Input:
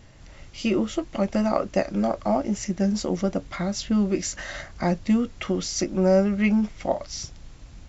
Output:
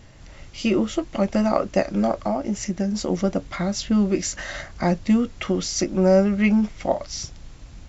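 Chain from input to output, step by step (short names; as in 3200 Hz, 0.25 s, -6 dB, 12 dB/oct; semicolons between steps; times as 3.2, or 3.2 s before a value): 2.24–3.09 compressor 4:1, threshold -23 dBFS, peak gain reduction 5.5 dB; gain +2.5 dB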